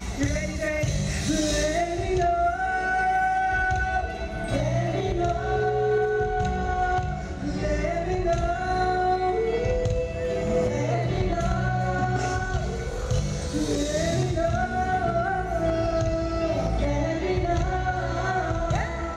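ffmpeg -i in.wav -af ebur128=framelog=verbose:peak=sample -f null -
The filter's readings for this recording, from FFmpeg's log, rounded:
Integrated loudness:
  I:         -25.6 LUFS
  Threshold: -35.6 LUFS
Loudness range:
  LRA:         1.8 LU
  Threshold: -45.5 LUFS
  LRA low:   -26.3 LUFS
  LRA high:  -24.5 LUFS
Sample peak:
  Peak:      -13.8 dBFS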